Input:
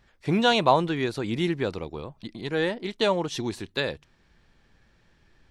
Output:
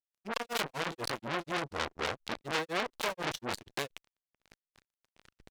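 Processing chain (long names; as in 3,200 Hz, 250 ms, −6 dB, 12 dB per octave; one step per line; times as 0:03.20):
low-shelf EQ 86 Hz +3 dB
fuzz pedal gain 45 dB, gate −51 dBFS
granular cloud 221 ms, grains 4.1 per second, pitch spread up and down by 0 semitones
dynamic equaliser 500 Hz, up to +5 dB, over −32 dBFS, Q 3.4
saturating transformer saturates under 3,200 Hz
level −7.5 dB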